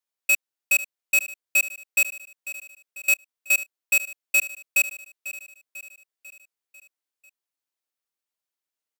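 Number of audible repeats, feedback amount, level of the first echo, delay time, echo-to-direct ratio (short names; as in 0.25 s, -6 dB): 4, 54%, -14.5 dB, 0.495 s, -13.0 dB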